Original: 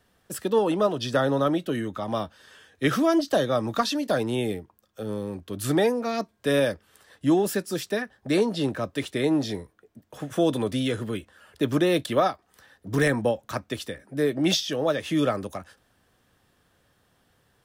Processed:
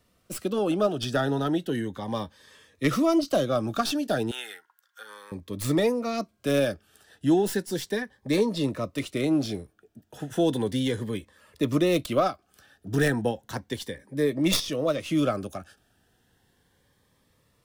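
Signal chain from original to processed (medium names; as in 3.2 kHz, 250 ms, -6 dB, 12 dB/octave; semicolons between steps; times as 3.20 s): tracing distortion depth 0.066 ms; 4.31–5.32 s: resonant high-pass 1.4 kHz, resonance Q 7.7; Shepard-style phaser rising 0.34 Hz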